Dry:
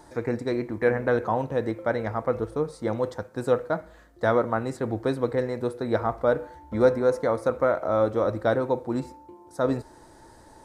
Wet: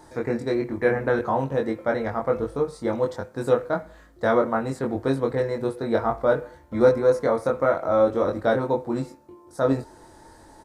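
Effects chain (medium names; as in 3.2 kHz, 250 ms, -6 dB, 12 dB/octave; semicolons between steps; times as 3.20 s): doubling 22 ms -2.5 dB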